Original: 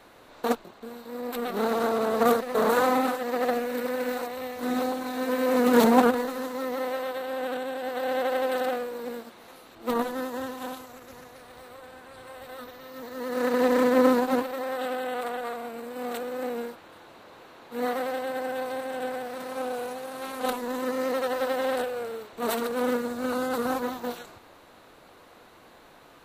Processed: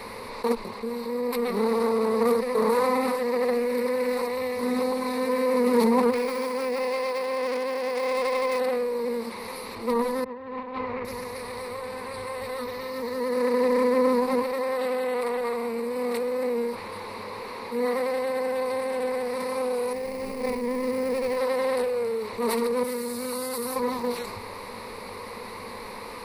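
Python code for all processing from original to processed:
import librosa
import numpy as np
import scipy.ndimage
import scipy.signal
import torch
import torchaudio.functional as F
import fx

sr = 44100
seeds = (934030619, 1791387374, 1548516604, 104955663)

y = fx.chain(x, sr, fx.self_delay(depth_ms=0.31),
    fx.low_shelf(hz=160.0, db=-8.5), at=(6.12, 8.59))
y = fx.chain(y, sr, fx.lowpass(hz=2900.0, slope=24),
    fx.over_compress(threshold_db=-42.0, ratio=-0.5), at=(10.24, 11.05))
y = fx.chain(y, sr, fx.median_filter(points=41),
    fx.high_shelf(hz=6000.0, db=7.0), at=(19.93, 21.37))
y = fx.chain(y, sr, fx.pre_emphasis(coefficient=0.8),
    fx.env_flatten(amount_pct=50), at=(22.83, 23.76))
y = fx.ripple_eq(y, sr, per_octave=0.9, db=13)
y = fx.env_flatten(y, sr, amount_pct=50)
y = y * librosa.db_to_amplitude(-8.0)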